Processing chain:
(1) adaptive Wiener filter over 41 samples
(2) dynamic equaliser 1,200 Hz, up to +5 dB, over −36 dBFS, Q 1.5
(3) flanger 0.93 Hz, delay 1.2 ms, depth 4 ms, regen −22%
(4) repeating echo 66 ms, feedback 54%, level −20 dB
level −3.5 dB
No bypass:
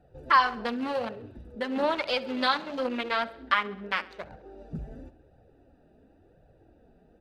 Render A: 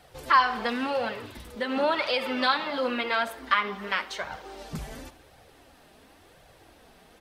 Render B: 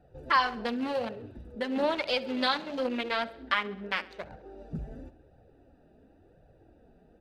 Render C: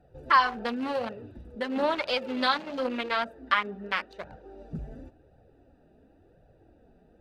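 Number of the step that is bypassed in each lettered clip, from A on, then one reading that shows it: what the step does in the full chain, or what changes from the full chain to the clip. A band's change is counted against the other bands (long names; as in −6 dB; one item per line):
1, 125 Hz band −1.5 dB
2, change in integrated loudness −2.5 LU
4, echo-to-direct ratio −18.5 dB to none audible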